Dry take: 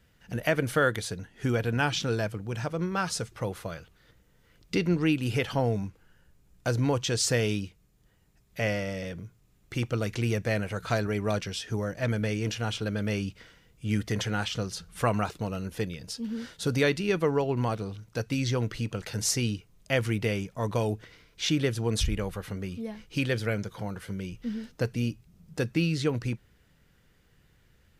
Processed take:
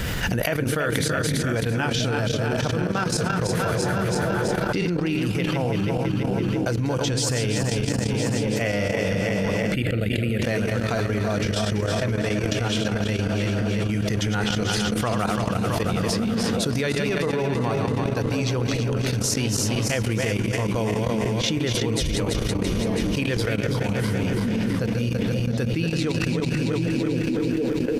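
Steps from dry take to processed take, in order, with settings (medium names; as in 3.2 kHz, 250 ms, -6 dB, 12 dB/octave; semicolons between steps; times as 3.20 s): backward echo that repeats 166 ms, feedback 76%, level -5.5 dB; repeats whose band climbs or falls 510 ms, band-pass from 160 Hz, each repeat 0.7 oct, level -4.5 dB; level held to a coarse grid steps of 14 dB; 9.74–10.42 s: static phaser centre 2.5 kHz, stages 4; level flattener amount 100%; trim +3.5 dB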